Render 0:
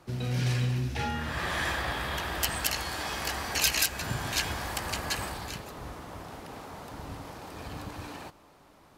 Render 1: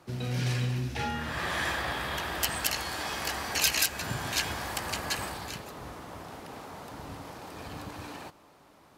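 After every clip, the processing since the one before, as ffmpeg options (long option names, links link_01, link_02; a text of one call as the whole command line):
ffmpeg -i in.wav -af "highpass=frequency=90:poles=1" out.wav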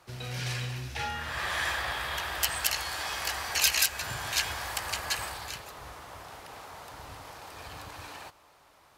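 ffmpeg -i in.wav -af "equalizer=frequency=230:width_type=o:width=1.9:gain=-14,volume=1.5dB" out.wav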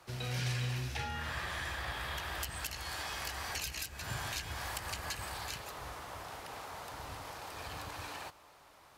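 ffmpeg -i in.wav -filter_complex "[0:a]acrossover=split=320[link_01][link_02];[link_02]acompressor=threshold=-37dB:ratio=10[link_03];[link_01][link_03]amix=inputs=2:normalize=0" out.wav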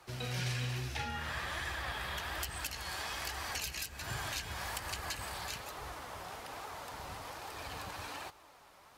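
ffmpeg -i in.wav -af "flanger=delay=2.2:depth=3.4:regen=63:speed=1.2:shape=triangular,volume=4.5dB" out.wav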